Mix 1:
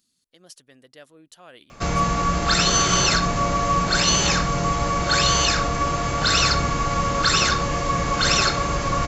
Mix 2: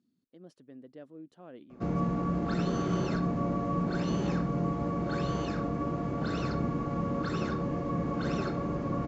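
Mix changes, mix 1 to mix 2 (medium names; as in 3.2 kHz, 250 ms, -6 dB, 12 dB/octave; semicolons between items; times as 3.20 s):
speech +7.0 dB; master: add band-pass filter 250 Hz, Q 1.4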